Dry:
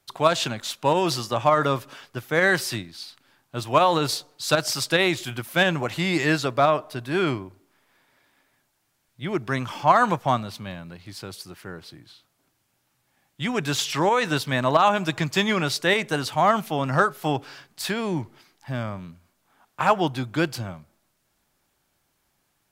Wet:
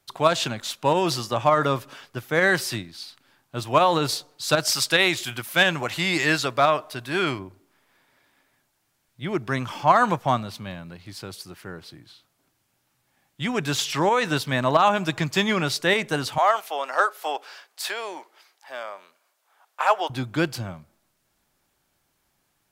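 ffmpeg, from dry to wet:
ffmpeg -i in.wav -filter_complex "[0:a]asettb=1/sr,asplit=3[link_01][link_02][link_03];[link_01]atrim=end=4.654[link_04];[link_02]atrim=start=4.65:end=7.39,asetpts=PTS-STARTPTS,afade=type=in:duration=0.004:curve=qsin,afade=type=out:start_time=2.736:duration=0.004:curve=qsin,tiltshelf=frequency=810:gain=-4[link_05];[link_03]atrim=start=7.386[link_06];[link_04][link_05]acrossfade=duration=0.004:curve1=hsin:curve2=qsin[link_07];[link_07][link_06]acrossfade=duration=0.004:curve1=qsin:curve2=hsin,asettb=1/sr,asplit=3[link_08][link_09][link_10];[link_08]atrim=end=16.384[link_11];[link_09]atrim=start=16.38:end=20.1,asetpts=PTS-STARTPTS,afade=type=in:duration=0.004:curve=qsin,afade=type=out:start_time=3.716:duration=0.004:curve=qsin,highpass=frequency=490:width=0.5412,highpass=frequency=490:width=1.3066[link_12];[link_10]atrim=start=20.096[link_13];[link_11][link_12]acrossfade=duration=0.004:curve1=hsin:curve2=qsin[link_14];[link_14][link_13]acrossfade=duration=0.004:curve1=qsin:curve2=hsin" out.wav

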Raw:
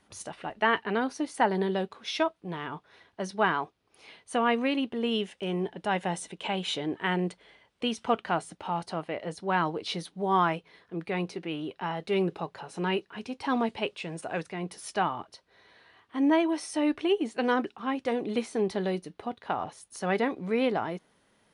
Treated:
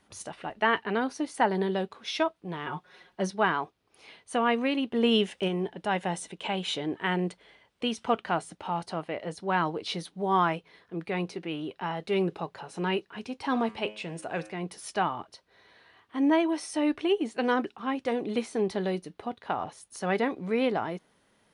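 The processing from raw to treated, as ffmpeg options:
ffmpeg -i in.wav -filter_complex "[0:a]asettb=1/sr,asplit=3[link_01][link_02][link_03];[link_01]atrim=end=2.664[link_04];[link_02]atrim=start=2.66:end=3.3,asetpts=PTS-STARTPTS,afade=type=in:duration=0.004:curve=qsin,afade=type=out:start_time=0.636:duration=0.004:curve=qsin,aecho=1:1:5.5:0.96,atrim=end_sample=28224[link_05];[link_03]atrim=start=3.296[link_06];[link_04][link_05]acrossfade=duration=0.004:curve1=hsin:curve2=qsin[link_07];[link_07][link_06]acrossfade=duration=0.004:curve1=qsin:curve2=hsin,asplit=3[link_08][link_09][link_10];[link_08]afade=type=out:start_time=4.93:duration=0.02[link_11];[link_09]acontrast=35,afade=type=in:start_time=4.93:duration=0.02,afade=type=out:start_time=5.47:duration=0.02[link_12];[link_10]afade=type=in:start_time=5.47:duration=0.02[link_13];[link_11][link_12][link_13]amix=inputs=3:normalize=0,asettb=1/sr,asplit=3[link_14][link_15][link_16];[link_14]atrim=end=13.434[link_17];[link_15]atrim=start=13.43:end=14.53,asetpts=PTS-STARTPTS,afade=type=in:duration=0.004:curve=qsin,afade=type=out:start_time=1.096:duration=0.004:curve=qsin,bandreject=frequency=106.4:width_type=h:width=4,bandreject=frequency=212.8:width_type=h:width=4,bandreject=frequency=319.2:width_type=h:width=4,bandreject=frequency=425.6:width_type=h:width=4,bandreject=frequency=532:width_type=h:width=4,bandreject=frequency=638.4:width_type=h:width=4,bandreject=frequency=744.8:width_type=h:width=4,bandreject=frequency=851.2:width_type=h:width=4,bandreject=frequency=957.6:width_type=h:width=4,bandreject=frequency=1064:width_type=h:width=4,bandreject=frequency=1170.4:width_type=h:width=4,bandreject=frequency=1276.8:width_type=h:width=4,bandreject=frequency=1383.2:width_type=h:width=4,bandreject=frequency=1489.6:width_type=h:width=4,bandreject=frequency=1596:width_type=h:width=4,bandreject=frequency=1702.4:width_type=h:width=4,bandreject=frequency=1808.8:width_type=h:width=4,bandreject=frequency=1915.2:width_type=h:width=4,bandreject=frequency=2021.6:width_type=h:width=4,bandreject=frequency=2128:width_type=h:width=4,bandreject=frequency=2234.4:width_type=h:width=4,bandreject=frequency=2340.8:width_type=h:width=4,bandreject=frequency=2447.2:width_type=h:width=4,bandreject=frequency=2553.6:width_type=h:width=4,bandreject=frequency=2660:width_type=h:width=4,bandreject=frequency=2766.4:width_type=h:width=4,bandreject=frequency=2872.8:width_type=h:width=4,bandreject=frequency=2979.2:width_type=h:width=4,bandreject=frequency=3085.6:width_type=h:width=4,bandreject=frequency=3192:width_type=h:width=4,bandreject=frequency=3298.4:width_type=h:width=4,bandreject=frequency=3404.8:width_type=h:width=4[link_18];[link_16]atrim=start=14.526[link_19];[link_17][link_18]acrossfade=duration=0.004:curve1=hsin:curve2=qsin[link_20];[link_20][link_19]acrossfade=duration=0.004:curve1=qsin:curve2=hsin" out.wav

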